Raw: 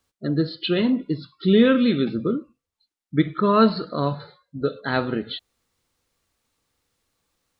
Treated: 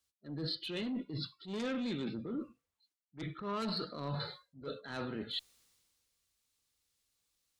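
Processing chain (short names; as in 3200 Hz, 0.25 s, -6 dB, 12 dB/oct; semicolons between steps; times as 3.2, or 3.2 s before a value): high shelf 2100 Hz +7 dB; added harmonics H 3 -9 dB, 5 -13 dB, 6 -33 dB, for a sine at -4 dBFS; reverse; compressor 8:1, threshold -34 dBFS, peak gain reduction 19 dB; reverse; transient shaper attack -8 dB, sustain +2 dB; three-band expander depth 40%; gain -1.5 dB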